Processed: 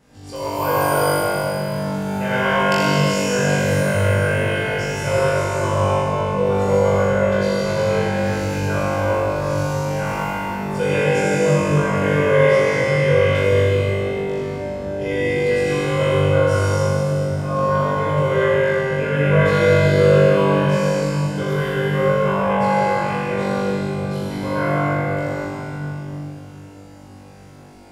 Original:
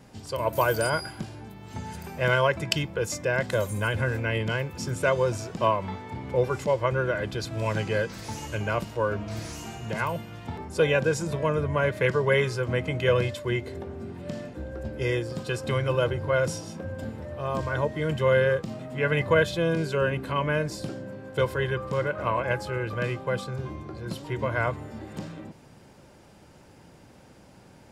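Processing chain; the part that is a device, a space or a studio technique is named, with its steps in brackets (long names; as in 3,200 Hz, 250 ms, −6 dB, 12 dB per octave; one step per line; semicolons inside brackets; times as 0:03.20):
tunnel (flutter between parallel walls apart 3.5 metres, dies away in 1.3 s; convolution reverb RT60 3.5 s, pre-delay 64 ms, DRR −5.5 dB)
level −5.5 dB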